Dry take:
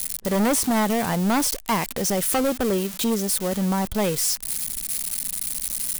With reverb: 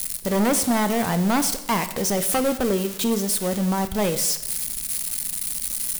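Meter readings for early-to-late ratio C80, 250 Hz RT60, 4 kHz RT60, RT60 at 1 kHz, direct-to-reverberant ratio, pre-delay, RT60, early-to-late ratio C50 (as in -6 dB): 14.5 dB, 0.90 s, 0.85 s, 0.90 s, 9.5 dB, 7 ms, 0.90 s, 12.5 dB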